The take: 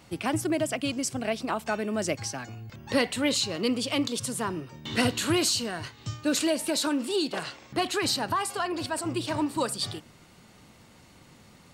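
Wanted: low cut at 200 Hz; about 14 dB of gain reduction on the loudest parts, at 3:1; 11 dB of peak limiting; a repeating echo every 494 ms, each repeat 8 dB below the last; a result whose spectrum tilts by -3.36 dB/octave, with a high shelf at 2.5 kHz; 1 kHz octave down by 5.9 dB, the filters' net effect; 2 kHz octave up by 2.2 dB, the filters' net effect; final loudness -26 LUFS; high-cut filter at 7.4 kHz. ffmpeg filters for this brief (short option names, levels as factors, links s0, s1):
-af "highpass=200,lowpass=7400,equalizer=f=1000:t=o:g=-9,equalizer=f=2000:t=o:g=8,highshelf=f=2500:g=-5.5,acompressor=threshold=0.01:ratio=3,alimiter=level_in=3.76:limit=0.0631:level=0:latency=1,volume=0.266,aecho=1:1:494|988|1482|1976|2470:0.398|0.159|0.0637|0.0255|0.0102,volume=7.5"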